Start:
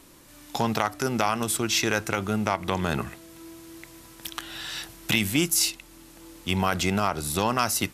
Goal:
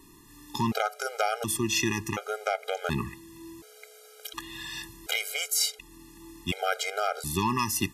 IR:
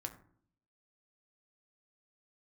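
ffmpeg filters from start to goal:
-af "aeval=exprs='val(0)+0.00224*sin(2*PI*430*n/s)':c=same,afftfilt=real='re*gt(sin(2*PI*0.69*pts/sr)*(1-2*mod(floor(b*sr/1024/410),2)),0)':imag='im*gt(sin(2*PI*0.69*pts/sr)*(1-2*mod(floor(b*sr/1024/410),2)),0)':win_size=1024:overlap=0.75"

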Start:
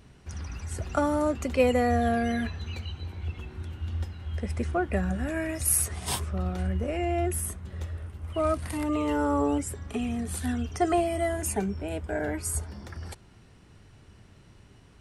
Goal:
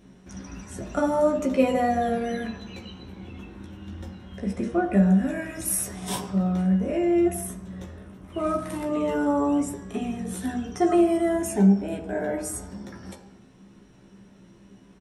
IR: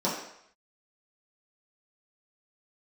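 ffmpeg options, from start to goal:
-filter_complex "[0:a]asplit=2[a][b];[b]adelay=15,volume=-5dB[c];[a][c]amix=inputs=2:normalize=0,asplit=2[d][e];[1:a]atrim=start_sample=2205,lowshelf=f=260:g=8[f];[e][f]afir=irnorm=-1:irlink=0,volume=-11.5dB[g];[d][g]amix=inputs=2:normalize=0,volume=-4.5dB"

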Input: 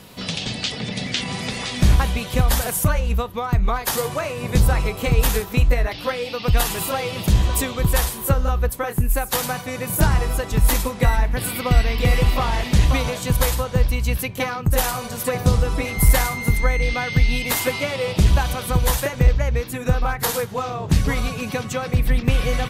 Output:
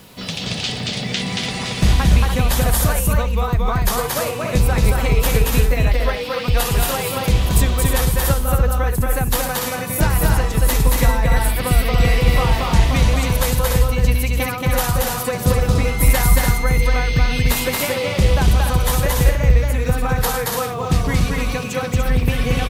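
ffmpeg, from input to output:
-af "aecho=1:1:227.4|291.5:0.794|0.501,acrusher=bits=7:mix=0:aa=0.5"

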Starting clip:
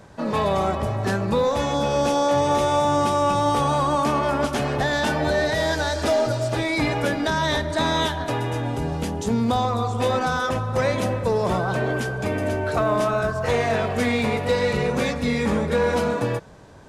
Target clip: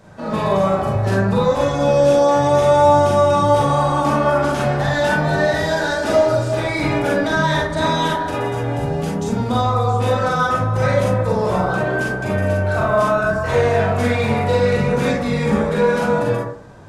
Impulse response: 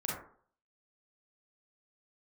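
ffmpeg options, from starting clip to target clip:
-filter_complex "[0:a]asettb=1/sr,asplit=3[a][b][c];[a]atrim=end=8.064[d];[b]atrim=start=8.06:end=8.48,asetpts=PTS-STARTPTS,afade=t=in:d=0.004:c=qsin,afade=t=out:st=0.416:d=0.004:c=qsin,equalizer=f=140:t=o:w=0.77:g=-7.5[e];[c]atrim=start=8.476[f];[d][e]acrossfade=d=0.004:c1=hsin:c2=qsin[g];[g][f]acrossfade=d=0.004:c1=qsin:c2=hsin[h];[1:a]atrim=start_sample=2205[i];[h][i]afir=irnorm=-1:irlink=0"

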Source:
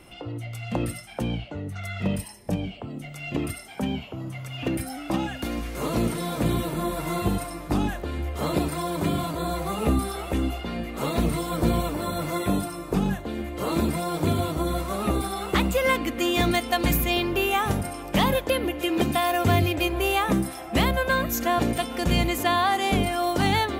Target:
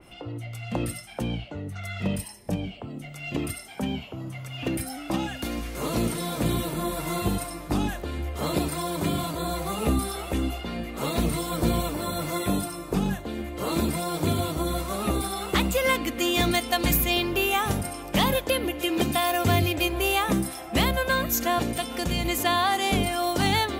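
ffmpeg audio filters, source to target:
-filter_complex "[0:a]asettb=1/sr,asplit=3[a][b][c];[a]atrim=end=21.604[d];[b]atrim=start=21.6:end=22.25,asetpts=PTS-STARTPTS,afade=t=in:d=0.004:c=qsin,afade=t=out:st=0.646:d=0.004:c=qsin,acompressor=threshold=-23dB:ratio=3[e];[c]atrim=start=22.246[f];[d][e]acrossfade=d=0.004:c1=hsin:c2=qsin[g];[g][f]acrossfade=d=0.004:c1=qsin:c2=hsin,adynamicequalizer=threshold=0.0112:dfrequency=2800:dqfactor=0.7:tfrequency=2800:tqfactor=0.7:attack=5:release=100:ratio=0.375:range=2.5:mode=boostabove:tftype=highshelf,volume=-1.5dB"

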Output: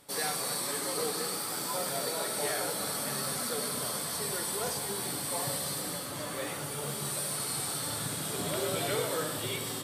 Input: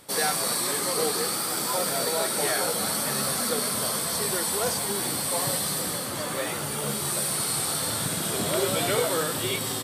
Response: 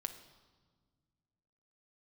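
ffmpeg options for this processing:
-filter_complex "[1:a]atrim=start_sample=2205,asetrate=37485,aresample=44100[a];[0:a][a]afir=irnorm=-1:irlink=0,volume=-6dB"

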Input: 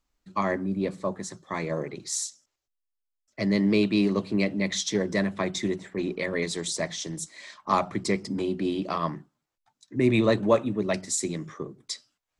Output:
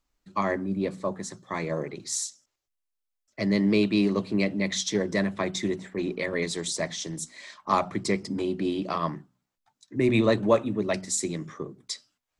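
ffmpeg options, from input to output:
-af "bandreject=f=61.95:t=h:w=4,bandreject=f=123.9:t=h:w=4,bandreject=f=185.85:t=h:w=4,bandreject=f=247.8:t=h:w=4"

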